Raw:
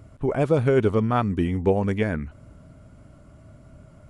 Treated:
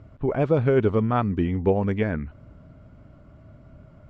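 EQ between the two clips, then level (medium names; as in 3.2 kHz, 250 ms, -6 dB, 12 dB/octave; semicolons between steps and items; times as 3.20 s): distance through air 180 m; 0.0 dB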